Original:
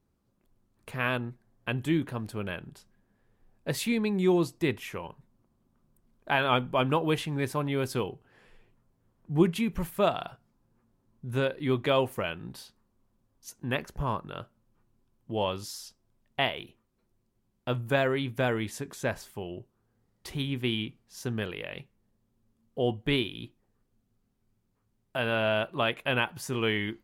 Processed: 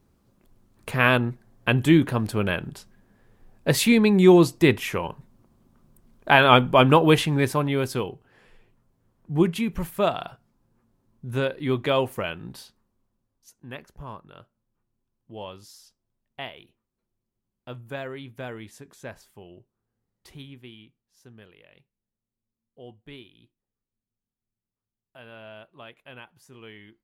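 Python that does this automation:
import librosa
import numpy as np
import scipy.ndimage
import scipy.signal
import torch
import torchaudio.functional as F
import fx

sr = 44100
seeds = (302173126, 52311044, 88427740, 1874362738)

y = fx.gain(x, sr, db=fx.line((7.19, 10.0), (8.03, 2.5), (12.59, 2.5), (13.54, -8.5), (20.32, -8.5), (20.74, -17.0)))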